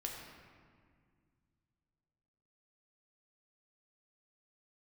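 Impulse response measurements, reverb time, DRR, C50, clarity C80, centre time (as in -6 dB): 2.0 s, -0.5 dB, 2.0 dB, 3.5 dB, 74 ms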